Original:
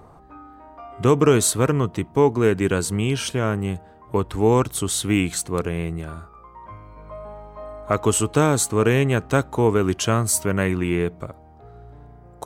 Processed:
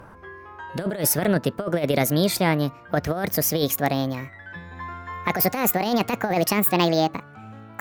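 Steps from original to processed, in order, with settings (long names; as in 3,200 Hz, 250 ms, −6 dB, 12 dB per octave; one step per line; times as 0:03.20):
gliding playback speed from 130% → 189%
compressor whose output falls as the input rises −20 dBFS, ratio −0.5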